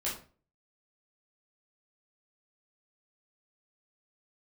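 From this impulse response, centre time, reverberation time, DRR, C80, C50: 33 ms, 0.40 s, -7.0 dB, 12.0 dB, 6.0 dB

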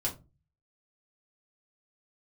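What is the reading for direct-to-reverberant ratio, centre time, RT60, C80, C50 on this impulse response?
-4.0 dB, 17 ms, 0.25 s, 20.5 dB, 13.0 dB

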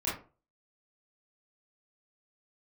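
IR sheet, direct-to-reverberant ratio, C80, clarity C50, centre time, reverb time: -9.0 dB, 11.5 dB, 4.5 dB, 40 ms, 0.35 s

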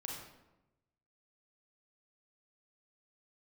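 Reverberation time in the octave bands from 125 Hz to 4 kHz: 1.3 s, 1.1 s, 1.0 s, 0.95 s, 0.75 s, 0.60 s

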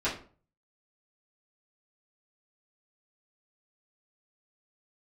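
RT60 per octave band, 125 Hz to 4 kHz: 0.60 s, 0.45 s, 0.45 s, 0.40 s, 0.35 s, 0.30 s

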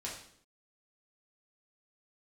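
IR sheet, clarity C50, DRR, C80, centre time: 4.5 dB, -5.0 dB, 8.5 dB, 37 ms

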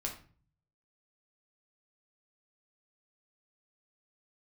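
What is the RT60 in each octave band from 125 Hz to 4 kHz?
0.95 s, 0.65 s, 0.45 s, 0.40 s, 0.40 s, 0.30 s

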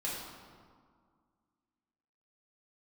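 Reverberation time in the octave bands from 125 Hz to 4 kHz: 2.1 s, 2.4 s, 1.9 s, 2.0 s, 1.4 s, 1.1 s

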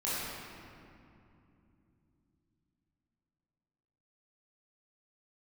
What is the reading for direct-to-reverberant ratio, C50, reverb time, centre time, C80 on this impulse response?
-10.5 dB, -5.0 dB, 2.8 s, 167 ms, -2.0 dB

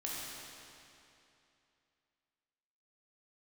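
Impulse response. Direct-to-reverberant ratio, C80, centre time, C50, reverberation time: -5.5 dB, -1.5 dB, 169 ms, -3.0 dB, 2.8 s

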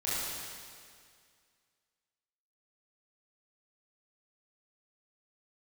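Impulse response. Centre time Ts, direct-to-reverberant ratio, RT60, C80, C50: 158 ms, -10.5 dB, 2.1 s, -2.0 dB, -4.5 dB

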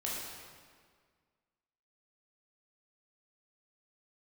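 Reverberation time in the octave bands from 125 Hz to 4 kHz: 1.9 s, 1.9 s, 1.8 s, 1.7 s, 1.6 s, 1.4 s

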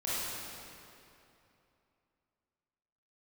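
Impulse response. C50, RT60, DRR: -6.0 dB, 2.8 s, -10.5 dB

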